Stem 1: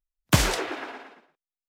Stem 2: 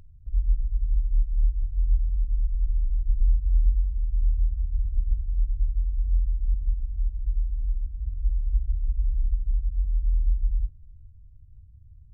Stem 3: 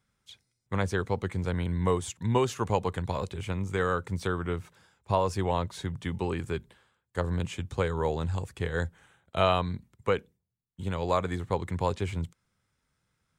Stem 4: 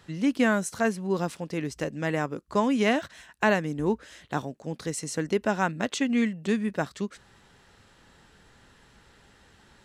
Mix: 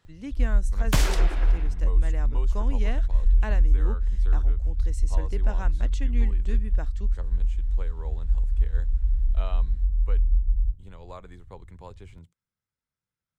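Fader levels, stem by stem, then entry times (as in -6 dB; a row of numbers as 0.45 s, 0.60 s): -5.0 dB, +1.5 dB, -16.0 dB, -12.5 dB; 0.60 s, 0.05 s, 0.00 s, 0.00 s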